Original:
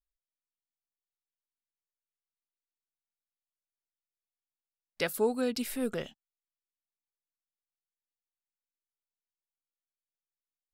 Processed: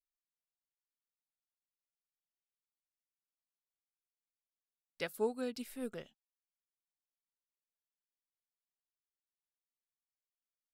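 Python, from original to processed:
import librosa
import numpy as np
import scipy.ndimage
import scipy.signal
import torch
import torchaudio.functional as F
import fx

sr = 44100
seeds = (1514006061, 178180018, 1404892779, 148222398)

y = fx.upward_expand(x, sr, threshold_db=-43.0, expansion=1.5)
y = y * librosa.db_to_amplitude(-5.5)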